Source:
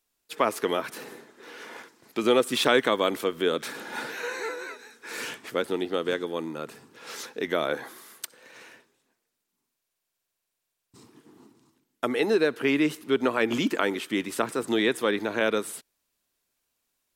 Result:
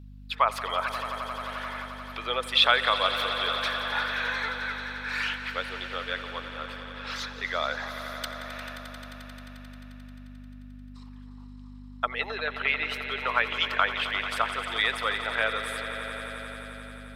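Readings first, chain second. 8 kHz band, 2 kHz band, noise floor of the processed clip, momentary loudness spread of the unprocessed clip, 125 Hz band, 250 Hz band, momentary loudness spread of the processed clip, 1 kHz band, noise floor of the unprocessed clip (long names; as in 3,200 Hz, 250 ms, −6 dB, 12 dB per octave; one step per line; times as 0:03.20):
−7.0 dB, +4.0 dB, −44 dBFS, 19 LU, 0.0 dB, −14.0 dB, 22 LU, +3.5 dB, −82 dBFS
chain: spectral envelope exaggerated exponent 1.5
high-pass filter 800 Hz 24 dB per octave
high shelf with overshoot 5,500 Hz −10 dB, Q 1.5
mains hum 50 Hz, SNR 13 dB
echo that builds up and dies away 88 ms, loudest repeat 5, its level −14 dB
level +4.5 dB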